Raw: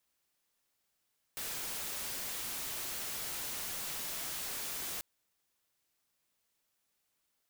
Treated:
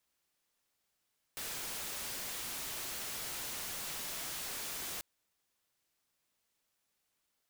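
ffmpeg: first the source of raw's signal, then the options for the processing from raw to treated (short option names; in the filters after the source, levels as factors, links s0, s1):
-f lavfi -i "anoisesrc=c=white:a=0.0183:d=3.64:r=44100:seed=1"
-af "highshelf=f=11000:g=-3.5"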